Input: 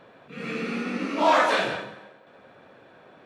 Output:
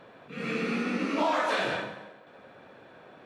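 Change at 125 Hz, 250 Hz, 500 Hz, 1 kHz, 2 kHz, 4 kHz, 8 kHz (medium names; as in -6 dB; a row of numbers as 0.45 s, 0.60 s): -0.5 dB, -1.0 dB, -4.5 dB, -6.5 dB, -4.0 dB, -4.5 dB, -4.5 dB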